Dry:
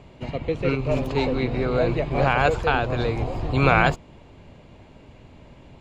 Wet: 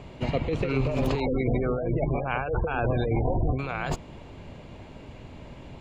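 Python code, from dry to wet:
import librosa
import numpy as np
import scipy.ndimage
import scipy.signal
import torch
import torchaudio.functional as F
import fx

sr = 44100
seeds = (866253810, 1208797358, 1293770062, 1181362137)

y = fx.over_compress(x, sr, threshold_db=-26.0, ratio=-1.0)
y = fx.spec_gate(y, sr, threshold_db=-20, keep='strong', at=(1.2, 3.59))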